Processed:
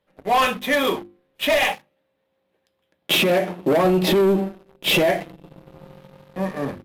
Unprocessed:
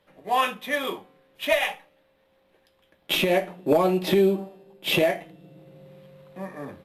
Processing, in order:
leveller curve on the samples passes 3
low-shelf EQ 420 Hz +5 dB
mains-hum notches 50/100/150/200/250/300/350 Hz
0:01.72–0:03.85: high-pass filter 91 Hz 12 dB per octave
brickwall limiter −9 dBFS, peak gain reduction 5 dB
level −3 dB

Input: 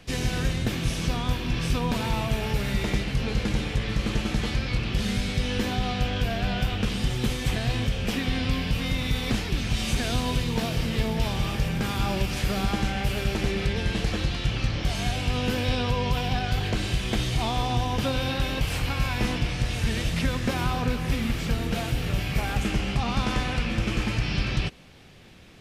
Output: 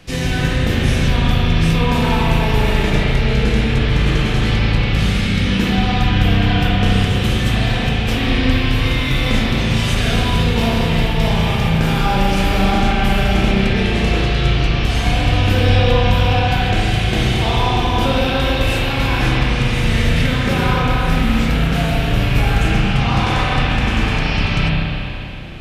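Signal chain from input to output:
spring reverb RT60 3.1 s, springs 31/37 ms, chirp 20 ms, DRR −6 dB
level +4.5 dB

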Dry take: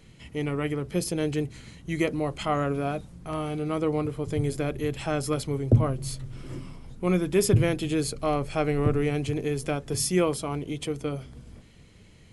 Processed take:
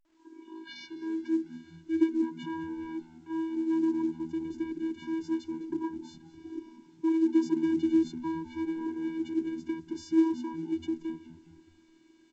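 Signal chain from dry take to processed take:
turntable start at the beginning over 1.78 s
soft clipping −22 dBFS, distortion −10 dB
channel vocoder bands 16, square 324 Hz
echo with shifted repeats 207 ms, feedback 43%, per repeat −79 Hz, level −17 dB
A-law companding 128 kbit/s 16,000 Hz

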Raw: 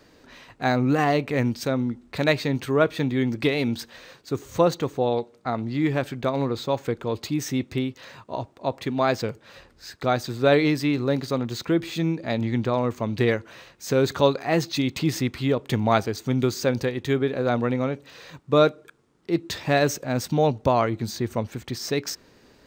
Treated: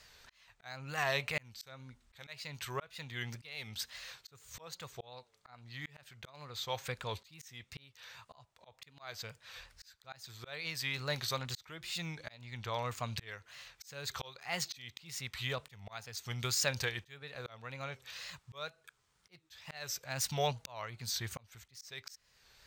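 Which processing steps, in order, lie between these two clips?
guitar amp tone stack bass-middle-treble 10-0-10
tape wow and flutter 120 cents
volume swells 660 ms
level +3 dB

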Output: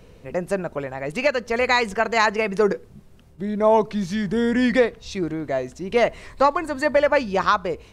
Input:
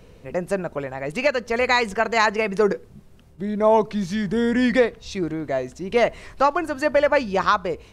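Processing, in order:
0:06.30–0:06.97: EQ curve with evenly spaced ripples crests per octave 1, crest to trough 7 dB

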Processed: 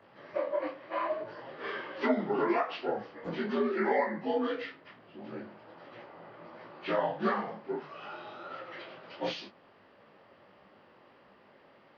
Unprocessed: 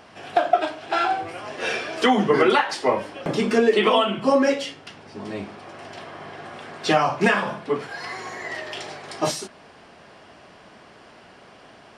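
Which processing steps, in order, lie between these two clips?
partials spread apart or drawn together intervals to 82%
micro pitch shift up and down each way 52 cents
level −5.5 dB

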